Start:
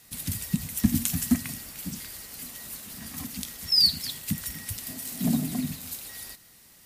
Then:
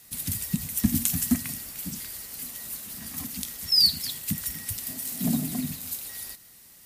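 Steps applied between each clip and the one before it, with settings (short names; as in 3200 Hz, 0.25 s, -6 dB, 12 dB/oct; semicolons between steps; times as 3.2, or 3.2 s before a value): high shelf 7400 Hz +6 dB; gain -1 dB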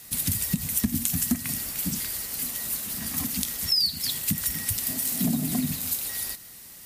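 compressor 6:1, threshold -28 dBFS, peak gain reduction 12.5 dB; gain +6.5 dB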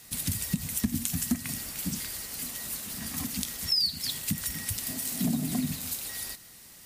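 bell 13000 Hz -5.5 dB 0.62 oct; gain -2.5 dB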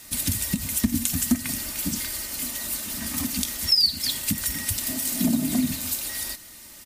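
comb 3.3 ms, depth 49%; gain +5 dB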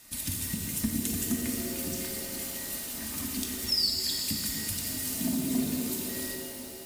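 shimmer reverb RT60 3.3 s, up +7 st, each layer -8 dB, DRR 0.5 dB; gain -9 dB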